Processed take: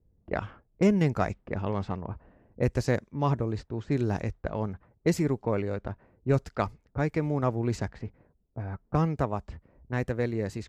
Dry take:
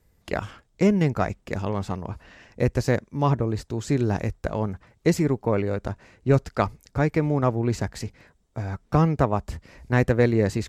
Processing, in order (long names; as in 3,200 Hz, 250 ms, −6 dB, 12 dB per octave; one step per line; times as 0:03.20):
low-pass that shuts in the quiet parts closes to 420 Hz, open at −19 dBFS
speech leveller within 4 dB 2 s
level −6 dB